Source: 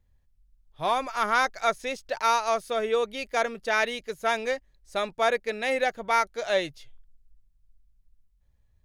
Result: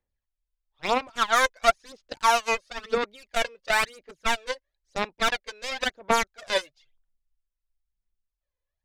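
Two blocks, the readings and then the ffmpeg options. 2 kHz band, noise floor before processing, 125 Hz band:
+1.5 dB, -66 dBFS, n/a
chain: -filter_complex "[0:a]acrossover=split=290 6500:gain=0.141 1 0.0708[a][b][c];[a][b][c]amix=inputs=3:normalize=0,aeval=exprs='0.316*(cos(1*acos(clip(val(0)/0.316,-1,1)))-cos(1*PI/2))+0.0562*(cos(7*acos(clip(val(0)/0.316,-1,1)))-cos(7*PI/2))':c=same,aphaser=in_gain=1:out_gain=1:delay=2:decay=0.67:speed=0.99:type=sinusoidal"

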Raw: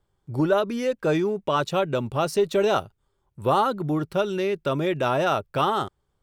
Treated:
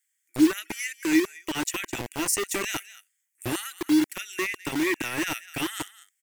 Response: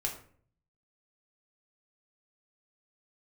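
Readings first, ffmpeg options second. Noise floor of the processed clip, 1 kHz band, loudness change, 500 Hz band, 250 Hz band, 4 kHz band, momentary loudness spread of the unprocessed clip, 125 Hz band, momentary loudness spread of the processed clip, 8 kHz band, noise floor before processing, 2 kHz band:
-77 dBFS, -12.0 dB, -3.0 dB, -11.5 dB, +2.5 dB, +0.5 dB, 5 LU, -12.0 dB, 10 LU, +12.5 dB, -74 dBFS, +3.0 dB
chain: -filter_complex "[0:a]firequalizer=gain_entry='entry(110,0);entry(170,-26);entry(310,8);entry(470,-27);entry(680,-20);entry(1000,-27);entry(1900,10);entry(3800,-7);entry(6800,14)':delay=0.05:min_phase=1,acrossover=split=980[a][b];[a]acrusher=bits=4:mix=0:aa=0.000001[c];[b]aecho=1:1:210:0.168[d];[c][d]amix=inputs=2:normalize=0"

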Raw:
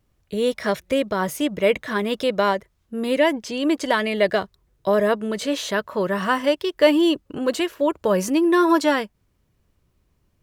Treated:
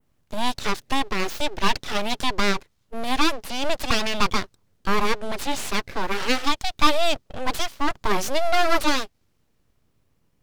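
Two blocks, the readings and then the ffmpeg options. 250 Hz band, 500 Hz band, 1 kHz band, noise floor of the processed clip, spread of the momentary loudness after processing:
-8.0 dB, -8.0 dB, +1.0 dB, -67 dBFS, 8 LU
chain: -af "aeval=exprs='abs(val(0))':c=same,adynamicequalizer=threshold=0.00891:dfrequency=4800:dqfactor=0.88:tfrequency=4800:tqfactor=0.88:attack=5:release=100:ratio=0.375:range=3:mode=boostabove:tftype=bell"

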